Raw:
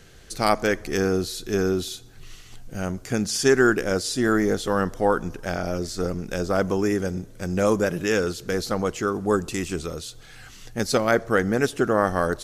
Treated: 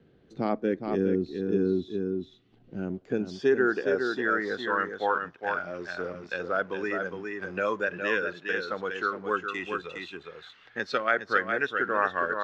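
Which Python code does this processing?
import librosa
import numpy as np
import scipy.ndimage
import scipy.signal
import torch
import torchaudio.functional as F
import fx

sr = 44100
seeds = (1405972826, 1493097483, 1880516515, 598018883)

p1 = fx.noise_reduce_blind(x, sr, reduce_db=10)
p2 = fx.lowpass_res(p1, sr, hz=3700.0, q=1.8)
p3 = np.sign(p2) * np.maximum(np.abs(p2) - 10.0 ** (-41.5 / 20.0), 0.0)
p4 = p2 + (p3 * librosa.db_to_amplitude(-3.5))
p5 = fx.filter_sweep_bandpass(p4, sr, from_hz=250.0, to_hz=1400.0, start_s=2.34, end_s=4.52, q=1.1)
p6 = p5 + fx.echo_single(p5, sr, ms=411, db=-6.5, dry=0)
p7 = fx.band_squash(p6, sr, depth_pct=40)
y = p7 * librosa.db_to_amplitude(-4.0)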